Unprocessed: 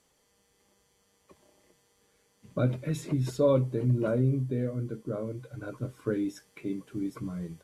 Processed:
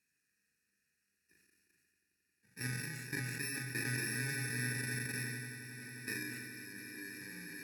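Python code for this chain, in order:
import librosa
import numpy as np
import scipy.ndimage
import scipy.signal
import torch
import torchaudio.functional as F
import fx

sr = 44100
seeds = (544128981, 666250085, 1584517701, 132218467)

p1 = fx.bit_reversed(x, sr, seeds[0], block=64)
p2 = fx.high_shelf(p1, sr, hz=2800.0, db=8.0)
p3 = fx.fixed_phaser(p2, sr, hz=1300.0, stages=4)
p4 = p3 + fx.echo_swell(p3, sr, ms=89, loudest=8, wet_db=-12.0, dry=0)
p5 = fx.level_steps(p4, sr, step_db=11)
p6 = fx.vowel_filter(p5, sr, vowel='e')
p7 = fx.peak_eq(p6, sr, hz=630.0, db=-12.5, octaves=1.5)
p8 = fx.doubler(p7, sr, ms=40.0, db=-8.5)
p9 = fx.sustainer(p8, sr, db_per_s=25.0)
y = p9 * 10.0 ** (14.5 / 20.0)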